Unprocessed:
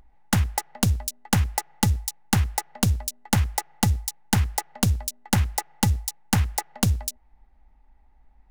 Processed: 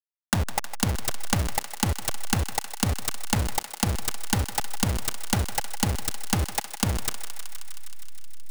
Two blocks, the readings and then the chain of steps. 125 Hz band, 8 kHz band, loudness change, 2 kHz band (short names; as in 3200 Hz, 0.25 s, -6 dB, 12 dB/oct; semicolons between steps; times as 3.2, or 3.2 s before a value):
-5.0 dB, 0.0 dB, -2.5 dB, 0.0 dB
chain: level-crossing sampler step -18.5 dBFS; compressor, threshold -21 dBFS, peak gain reduction 6.5 dB; on a send: thinning echo 0.157 s, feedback 80%, high-pass 600 Hz, level -10 dB; on the sum: gain +1 dB